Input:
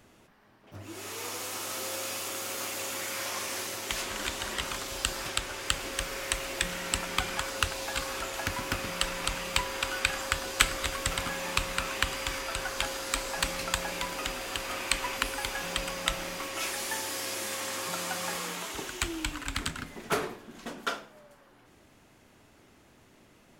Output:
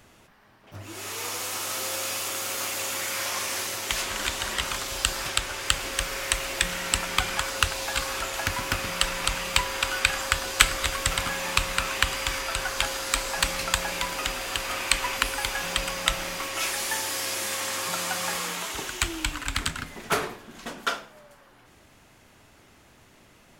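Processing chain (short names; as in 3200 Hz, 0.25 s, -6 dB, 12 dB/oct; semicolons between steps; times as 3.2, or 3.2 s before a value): bell 300 Hz -5 dB 2 oct; gain +5.5 dB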